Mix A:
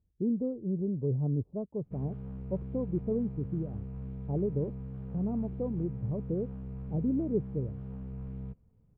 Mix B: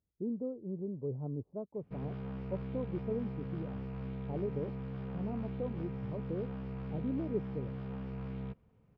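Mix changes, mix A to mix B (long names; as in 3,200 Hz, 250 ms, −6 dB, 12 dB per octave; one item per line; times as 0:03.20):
background +9.5 dB
master: add spectral tilt +3.5 dB per octave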